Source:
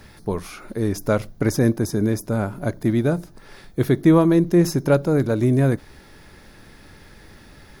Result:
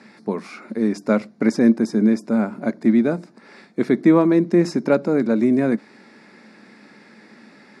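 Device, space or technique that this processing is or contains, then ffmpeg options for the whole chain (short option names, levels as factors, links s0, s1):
television speaker: -af "highpass=f=200:w=0.5412,highpass=f=200:w=1.3066,equalizer=f=220:t=q:w=4:g=10,equalizer=f=2200:t=q:w=4:g=5,equalizer=f=3200:t=q:w=4:g=-9,equalizer=f=6400:t=q:w=4:g=-10,lowpass=f=7300:w=0.5412,lowpass=f=7300:w=1.3066,equalizer=f=7200:t=o:w=0.44:g=4"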